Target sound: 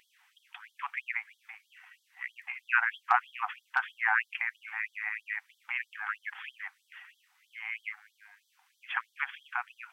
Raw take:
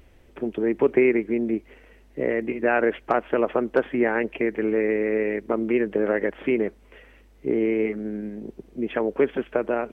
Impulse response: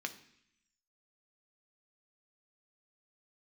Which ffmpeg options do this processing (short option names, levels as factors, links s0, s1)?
-af "equalizer=f=1500:w=1.5:g=3,afftfilt=real='re*gte(b*sr/1024,700*pow(3200/700,0.5+0.5*sin(2*PI*3.1*pts/sr)))':imag='im*gte(b*sr/1024,700*pow(3200/700,0.5+0.5*sin(2*PI*3.1*pts/sr)))':win_size=1024:overlap=0.75"